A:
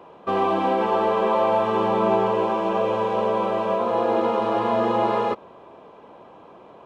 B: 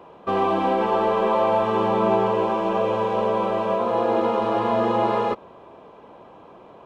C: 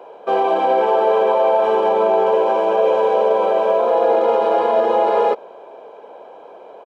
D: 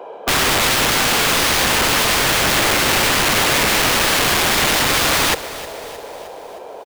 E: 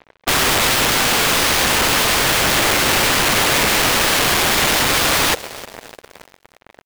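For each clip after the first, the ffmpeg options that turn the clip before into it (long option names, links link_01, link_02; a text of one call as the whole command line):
ffmpeg -i in.wav -af "lowshelf=frequency=92:gain=6" out.wav
ffmpeg -i in.wav -af "alimiter=limit=-14.5dB:level=0:latency=1:release=20,highpass=frequency=430:width_type=q:width=4.1,aecho=1:1:1.3:0.52,volume=1.5dB" out.wav
ffmpeg -i in.wav -af "acontrast=34,aeval=exprs='(mod(3.76*val(0)+1,2)-1)/3.76':channel_layout=same,aecho=1:1:311|622|933|1244|1555:0.158|0.0903|0.0515|0.0294|0.0167" out.wav
ffmpeg -i in.wav -af "acrusher=bits=3:mix=0:aa=0.5" out.wav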